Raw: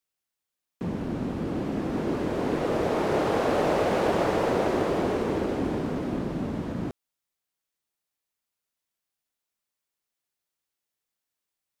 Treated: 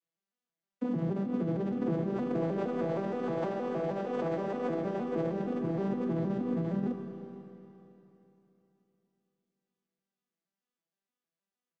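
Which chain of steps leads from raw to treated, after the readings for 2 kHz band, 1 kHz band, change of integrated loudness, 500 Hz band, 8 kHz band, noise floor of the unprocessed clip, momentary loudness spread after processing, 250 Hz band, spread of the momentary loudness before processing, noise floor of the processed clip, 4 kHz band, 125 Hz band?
−12.0 dB, −10.0 dB, −5.5 dB, −6.5 dB, below −15 dB, below −85 dBFS, 4 LU, −3.5 dB, 8 LU, below −85 dBFS, below −15 dB, −2.5 dB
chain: vocoder with an arpeggio as carrier minor triad, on E3, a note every 156 ms
compressor whose output falls as the input rises −31 dBFS, ratio −1
single-tap delay 498 ms −20.5 dB
four-comb reverb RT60 3.3 s, combs from 26 ms, DRR 6 dB
level −1.5 dB

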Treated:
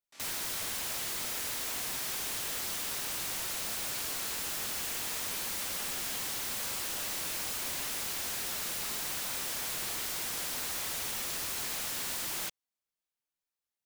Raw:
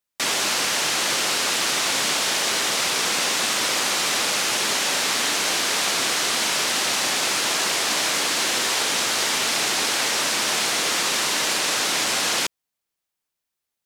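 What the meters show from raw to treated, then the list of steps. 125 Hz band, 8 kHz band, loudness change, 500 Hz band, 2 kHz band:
−8.5 dB, −13.0 dB, −13.0 dB, −17.0 dB, −17.5 dB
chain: multi-voice chorus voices 4, 0.65 Hz, delay 26 ms, depth 4.2 ms
echo ahead of the sound 74 ms −22 dB
wrap-around overflow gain 24 dB
level −7 dB

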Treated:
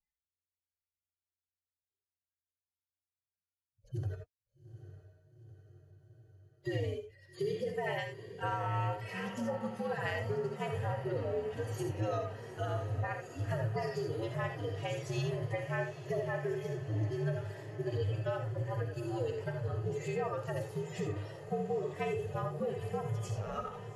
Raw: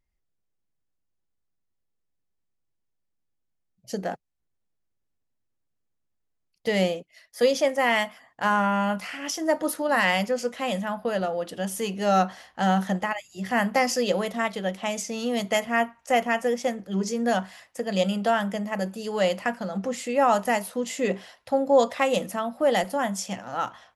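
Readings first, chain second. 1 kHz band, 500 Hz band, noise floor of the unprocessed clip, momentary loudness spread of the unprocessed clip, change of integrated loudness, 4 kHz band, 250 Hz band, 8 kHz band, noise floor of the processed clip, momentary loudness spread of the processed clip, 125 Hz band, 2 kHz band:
−14.5 dB, −11.0 dB, −77 dBFS, 9 LU, −11.0 dB, −17.0 dB, −14.0 dB, −19.5 dB, below −85 dBFS, 5 LU, +1.5 dB, −14.5 dB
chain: harmonic-percussive split with one part muted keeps harmonic
noise reduction from a noise print of the clip's start 29 dB
downward compressor 5 to 1, threshold −33 dBFS, peak gain reduction 17 dB
frequency shifter −88 Hz
feedback delay with all-pass diffusion 838 ms, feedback 68%, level −12.5 dB
reverb whose tail is shaped and stops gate 100 ms rising, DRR 4.5 dB
level −2 dB

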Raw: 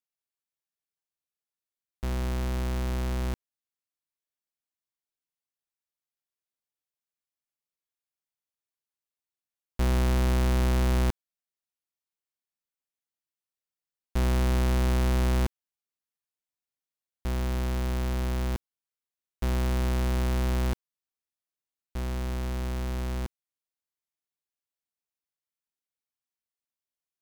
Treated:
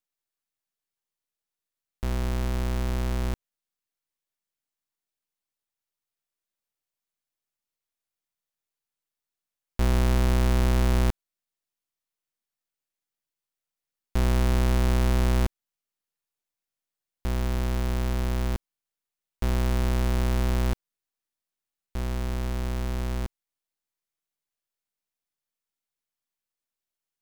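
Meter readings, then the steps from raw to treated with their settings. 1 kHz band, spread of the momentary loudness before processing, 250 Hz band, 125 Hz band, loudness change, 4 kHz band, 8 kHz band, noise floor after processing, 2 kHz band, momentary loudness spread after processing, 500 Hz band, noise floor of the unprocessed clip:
+1.5 dB, 10 LU, +1.5 dB, +1.5 dB, +1.5 dB, +1.5 dB, +1.5 dB, below −85 dBFS, +1.5 dB, 11 LU, +1.5 dB, below −85 dBFS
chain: gain on one half-wave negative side −12 dB
level +5.5 dB

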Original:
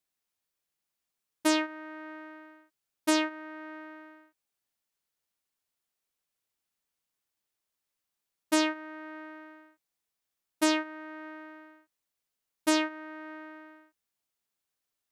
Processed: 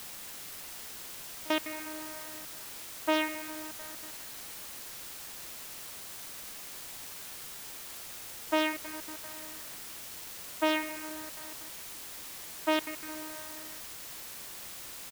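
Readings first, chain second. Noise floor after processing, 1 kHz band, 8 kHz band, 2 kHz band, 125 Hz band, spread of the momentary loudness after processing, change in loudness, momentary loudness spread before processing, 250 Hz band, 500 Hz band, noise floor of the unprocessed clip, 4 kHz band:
−45 dBFS, −0.5 dB, +1.5 dB, −0.5 dB, can't be measured, 11 LU, −6.0 dB, 20 LU, −5.5 dB, 0.0 dB, below −85 dBFS, −0.5 dB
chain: high-pass filter 600 Hz 12 dB per octave
comb filter 6.1 ms, depth 40%
delay with a low-pass on its return 68 ms, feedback 82%, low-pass 2,800 Hz, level −12 dB
low-pass that shuts in the quiet parts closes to 1,400 Hz, open at −21.5 dBFS
gate pattern "xx.x.xxxxxxxxxx." 190 BPM −24 dB
high-frequency loss of the air 290 metres
bit-depth reduction 8 bits, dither triangular
level +4 dB

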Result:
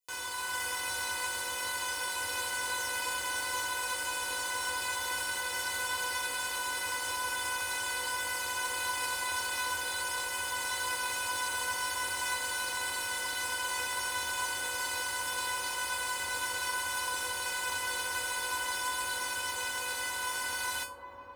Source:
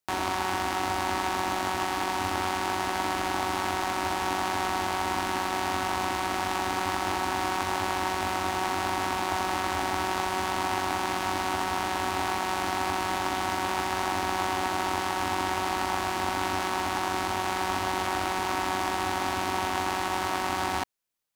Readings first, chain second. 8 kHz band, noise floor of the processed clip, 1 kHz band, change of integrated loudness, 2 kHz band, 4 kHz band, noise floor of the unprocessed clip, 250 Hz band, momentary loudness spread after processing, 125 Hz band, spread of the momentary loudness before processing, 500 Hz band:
+4.0 dB, −37 dBFS, −10.0 dB, −4.0 dB, 0.0 dB, −1.0 dB, −31 dBFS, −20.5 dB, 1 LU, −16.0 dB, 0 LU, −11.5 dB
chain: high-pass filter 43 Hz
high-shelf EQ 2,500 Hz +11.5 dB
automatic gain control
tuned comb filter 500 Hz, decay 0.26 s, harmonics all, mix 100%
on a send: delay with a low-pass on its return 384 ms, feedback 83%, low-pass 980 Hz, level −7.5 dB
on the sum: level +6 dB

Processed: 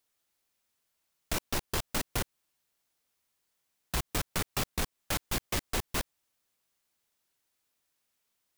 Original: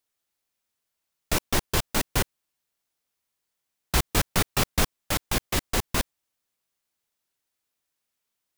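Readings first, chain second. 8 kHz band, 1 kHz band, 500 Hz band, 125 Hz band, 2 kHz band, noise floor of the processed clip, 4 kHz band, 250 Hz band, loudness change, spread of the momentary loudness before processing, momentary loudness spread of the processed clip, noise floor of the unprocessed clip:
−7.0 dB, −7.5 dB, −7.5 dB, −8.0 dB, −7.5 dB, −83 dBFS, −7.0 dB, −8.0 dB, −7.0 dB, 5 LU, 4 LU, −82 dBFS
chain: downward compressor, threshold −24 dBFS, peak gain reduction 7 dB
soft clipping −28.5 dBFS, distortion −9 dB
level +2.5 dB

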